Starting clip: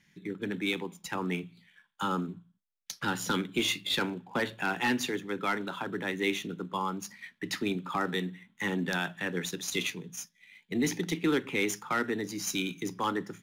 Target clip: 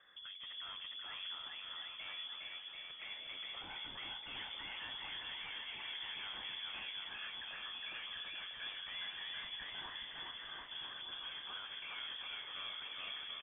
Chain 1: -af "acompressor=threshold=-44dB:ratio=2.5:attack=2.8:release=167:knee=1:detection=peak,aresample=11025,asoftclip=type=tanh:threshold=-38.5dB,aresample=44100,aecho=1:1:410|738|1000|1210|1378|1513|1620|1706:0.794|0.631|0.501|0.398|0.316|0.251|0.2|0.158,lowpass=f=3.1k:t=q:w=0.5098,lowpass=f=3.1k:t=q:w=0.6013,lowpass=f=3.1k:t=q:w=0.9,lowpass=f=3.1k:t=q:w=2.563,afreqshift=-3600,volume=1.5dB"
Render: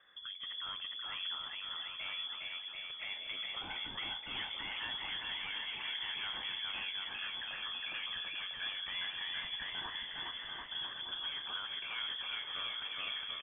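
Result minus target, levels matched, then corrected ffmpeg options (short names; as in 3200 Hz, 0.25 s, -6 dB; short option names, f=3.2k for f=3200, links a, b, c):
soft clip: distortion -8 dB
-af "acompressor=threshold=-44dB:ratio=2.5:attack=2.8:release=167:knee=1:detection=peak,aresample=11025,asoftclip=type=tanh:threshold=-48dB,aresample=44100,aecho=1:1:410|738|1000|1210|1378|1513|1620|1706:0.794|0.631|0.501|0.398|0.316|0.251|0.2|0.158,lowpass=f=3.1k:t=q:w=0.5098,lowpass=f=3.1k:t=q:w=0.6013,lowpass=f=3.1k:t=q:w=0.9,lowpass=f=3.1k:t=q:w=2.563,afreqshift=-3600,volume=1.5dB"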